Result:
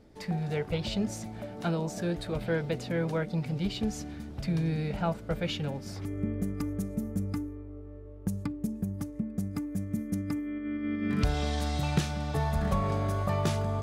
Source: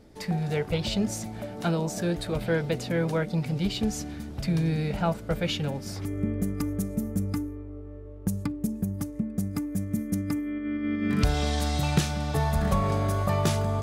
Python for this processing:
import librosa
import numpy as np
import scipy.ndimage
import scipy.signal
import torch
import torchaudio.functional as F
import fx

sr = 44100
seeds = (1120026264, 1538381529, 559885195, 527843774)

y = fx.high_shelf(x, sr, hz=6600.0, db=-6.5)
y = y * 10.0 ** (-3.5 / 20.0)